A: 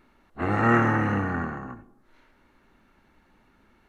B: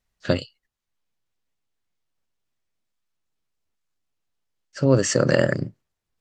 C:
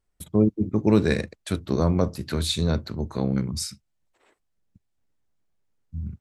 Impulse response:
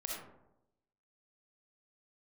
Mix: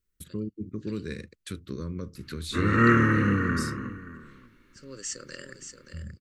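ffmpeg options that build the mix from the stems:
-filter_complex "[0:a]adelay=2150,volume=2dB,asplit=2[a][b];[b]volume=-16dB[c];[1:a]aemphasis=mode=production:type=riaa,volume=-19.5dB,asplit=2[d][e];[e]volume=-8.5dB[f];[2:a]acompressor=threshold=-33dB:ratio=2,volume=-4dB,asplit=2[g][h];[h]apad=whole_len=273498[i];[d][i]sidechaincompress=threshold=-52dB:ratio=6:attack=16:release=636[j];[c][f]amix=inputs=2:normalize=0,aecho=0:1:577:1[k];[a][j][g][k]amix=inputs=4:normalize=0,asuperstop=centerf=750:order=4:qfactor=1.1"

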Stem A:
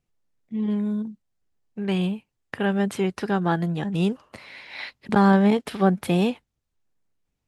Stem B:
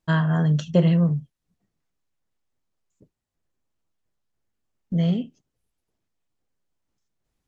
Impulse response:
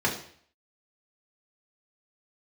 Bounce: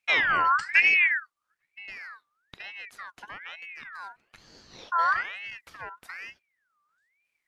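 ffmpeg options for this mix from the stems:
-filter_complex "[0:a]acompressor=threshold=-33dB:ratio=2.5,volume=-7.5dB[a];[1:a]volume=0dB[b];[a][b]amix=inputs=2:normalize=0,aeval=exprs='val(0)*sin(2*PI*1800*n/s+1800*0.35/1.1*sin(2*PI*1.1*n/s))':c=same"

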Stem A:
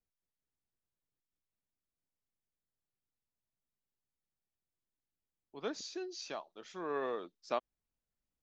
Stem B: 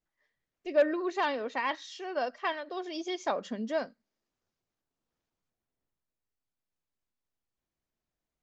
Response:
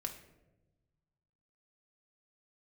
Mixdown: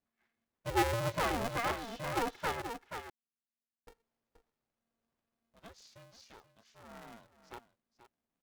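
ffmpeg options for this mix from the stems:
-filter_complex "[0:a]lowshelf=f=480:g=-4.5,volume=-13dB,asplit=2[a][b];[b]volume=-14dB[c];[1:a]lowpass=f=1.9k:p=1,asoftclip=type=tanh:threshold=-23dB,volume=-0.5dB,asplit=3[d][e][f];[d]atrim=end=2.62,asetpts=PTS-STARTPTS,afade=t=out:st=2.616:d=0.004:c=hsin[g];[e]atrim=start=2.62:end=3.87,asetpts=PTS-STARTPTS,volume=0[h];[f]atrim=start=3.87,asetpts=PTS-STARTPTS,afade=t=in:d=0.004:c=hsin[i];[g][h][i]concat=n=3:v=0:a=1,asplit=2[j][k];[k]volume=-8dB[l];[c][l]amix=inputs=2:normalize=0,aecho=0:1:480:1[m];[a][j][m]amix=inputs=3:normalize=0,aeval=exprs='val(0)*sgn(sin(2*PI*230*n/s))':c=same"

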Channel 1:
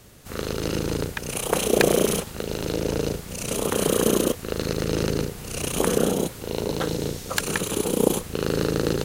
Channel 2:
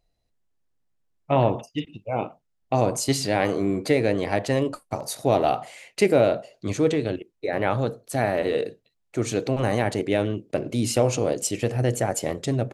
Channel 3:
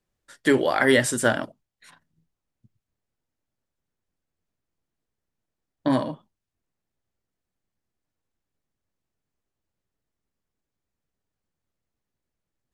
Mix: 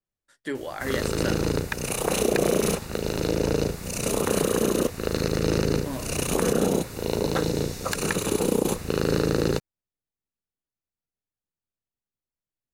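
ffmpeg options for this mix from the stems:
-filter_complex "[0:a]bandreject=f=3.2k:w=6.2,alimiter=limit=-12dB:level=0:latency=1:release=49,adelay=550,volume=1.5dB[a];[2:a]volume=-12dB[b];[a][b]amix=inputs=2:normalize=0,adynamicequalizer=threshold=0.00891:dfrequency=6800:dqfactor=0.7:tfrequency=6800:tqfactor=0.7:attack=5:release=100:ratio=0.375:range=2.5:mode=cutabove:tftype=highshelf"

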